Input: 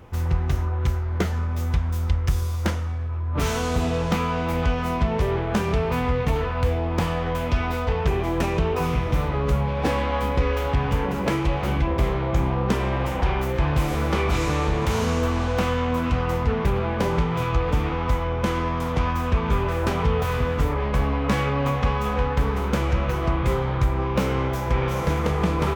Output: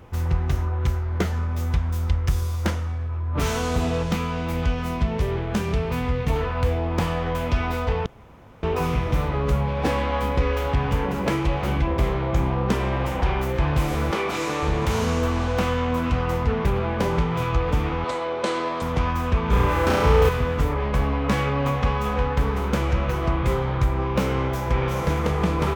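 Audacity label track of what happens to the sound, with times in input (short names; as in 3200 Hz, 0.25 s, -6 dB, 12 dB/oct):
4.030000	6.300000	bell 860 Hz -5 dB 2.4 oct
8.060000	8.630000	room tone
14.110000	14.630000	HPF 240 Hz
18.040000	18.820000	speaker cabinet 320–9900 Hz, peaks and dips at 370 Hz +5 dB, 600 Hz +7 dB, 4100 Hz +9 dB, 8100 Hz +7 dB
19.490000	20.290000	flutter echo walls apart 5.8 m, dies away in 1.3 s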